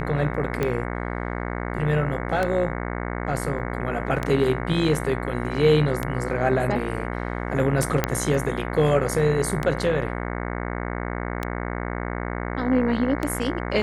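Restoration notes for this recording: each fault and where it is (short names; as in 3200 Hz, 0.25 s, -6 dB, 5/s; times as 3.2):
buzz 60 Hz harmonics 37 -29 dBFS
tick 33 1/3 rpm -11 dBFS
3.59–3.6 gap 5 ms
8.04 pop -5 dBFS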